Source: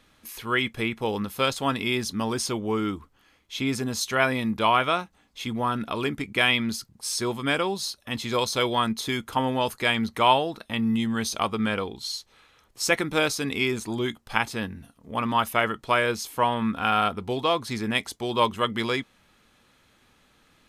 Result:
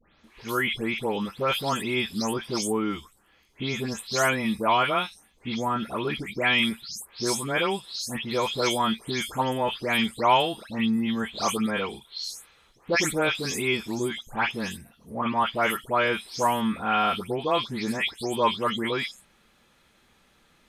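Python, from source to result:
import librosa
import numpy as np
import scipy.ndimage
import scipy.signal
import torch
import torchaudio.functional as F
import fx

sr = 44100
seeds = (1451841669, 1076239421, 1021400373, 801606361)

y = fx.spec_delay(x, sr, highs='late', ms=237)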